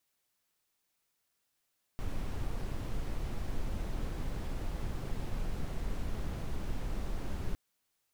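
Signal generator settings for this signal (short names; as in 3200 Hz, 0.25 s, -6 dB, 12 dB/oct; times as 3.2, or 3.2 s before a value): noise brown, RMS -34 dBFS 5.56 s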